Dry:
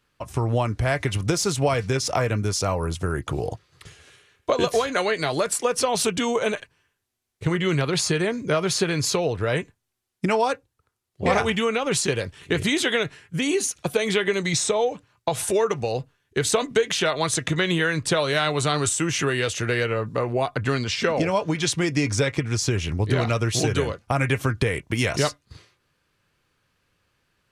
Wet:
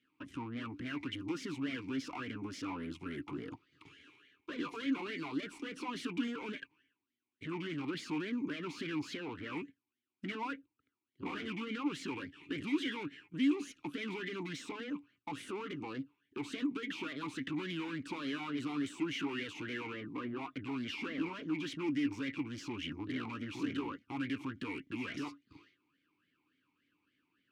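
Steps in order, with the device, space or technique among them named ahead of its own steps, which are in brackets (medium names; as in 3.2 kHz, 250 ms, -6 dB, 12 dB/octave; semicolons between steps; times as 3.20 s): talk box (valve stage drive 32 dB, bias 0.6; talking filter i-u 3.5 Hz); trim +8.5 dB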